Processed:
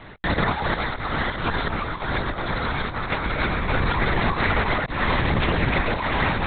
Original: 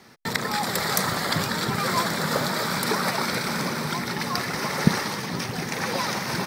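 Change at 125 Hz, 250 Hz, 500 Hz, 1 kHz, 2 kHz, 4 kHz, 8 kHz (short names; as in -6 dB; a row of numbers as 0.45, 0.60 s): +4.5 dB, +0.5 dB, +2.0 dB, +2.0 dB, +3.5 dB, -3.5 dB, under -40 dB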